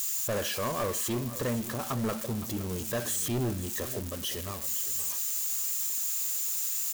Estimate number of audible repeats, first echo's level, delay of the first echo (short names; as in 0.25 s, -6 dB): 2, -15.0 dB, 0.515 s